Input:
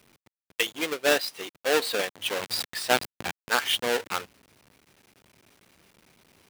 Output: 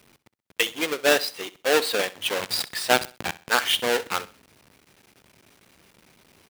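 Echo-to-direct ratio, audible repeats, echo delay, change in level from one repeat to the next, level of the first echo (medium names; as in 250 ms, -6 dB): -17.5 dB, 2, 64 ms, -10.0 dB, -18.0 dB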